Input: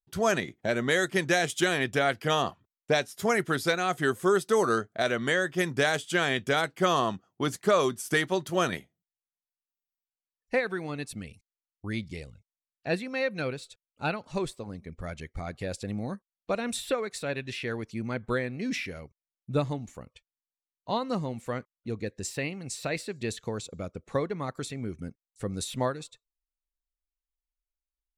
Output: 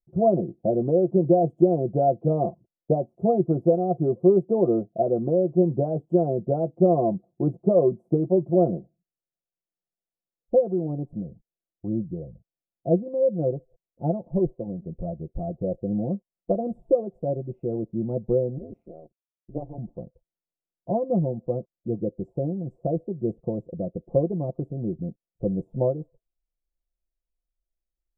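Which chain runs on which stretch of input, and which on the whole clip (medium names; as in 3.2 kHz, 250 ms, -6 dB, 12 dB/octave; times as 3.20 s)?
18.58–19.78 s: high-pass 570 Hz 6 dB/octave + AM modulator 160 Hz, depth 100%
whole clip: elliptic low-pass 670 Hz, stop band 60 dB; comb 5.8 ms, depth 67%; trim +6 dB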